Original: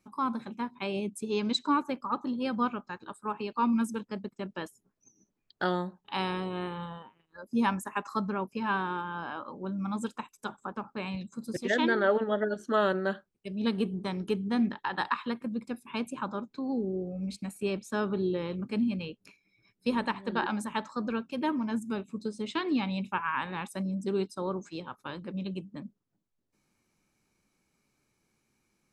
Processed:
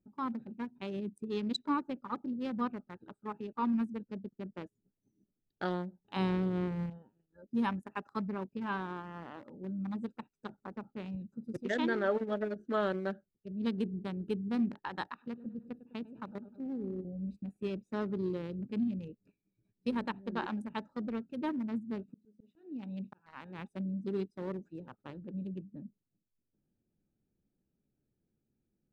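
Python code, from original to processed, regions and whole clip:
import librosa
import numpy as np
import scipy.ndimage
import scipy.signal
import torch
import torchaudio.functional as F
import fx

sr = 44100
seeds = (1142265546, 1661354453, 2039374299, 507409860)

y = fx.chain(x, sr, fx.low_shelf(hz=400.0, db=10.5),
    fx.hum_notches(base_hz=50, count=10), at=(6.16, 6.9))
y = fx.chain(y, sr, fx.level_steps(step_db=11),
    fx.echo_feedback(ms=102, feedback_pct=58, wet_db=-12.5), at=(15.04, 17.05))
y = fx.chain(y, sr, fx.low_shelf(hz=89.0, db=-10.5),
    fx.auto_swell(attack_ms=486.0), at=(22.09, 23.59))
y = fx.wiener(y, sr, points=41)
y = fx.low_shelf(y, sr, hz=390.0, db=4.0)
y = y * 10.0 ** (-6.5 / 20.0)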